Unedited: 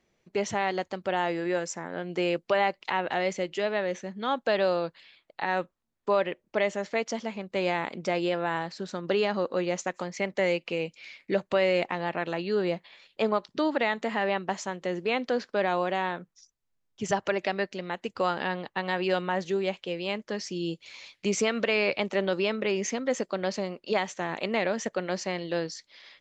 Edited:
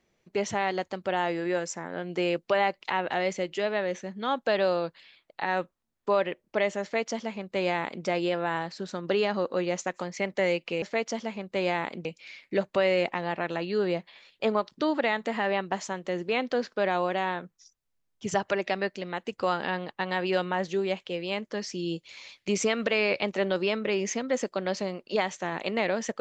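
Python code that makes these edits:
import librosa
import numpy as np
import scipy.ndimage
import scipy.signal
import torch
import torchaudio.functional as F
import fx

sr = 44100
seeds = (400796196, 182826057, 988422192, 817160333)

y = fx.edit(x, sr, fx.duplicate(start_s=6.82, length_s=1.23, to_s=10.82), tone=tone)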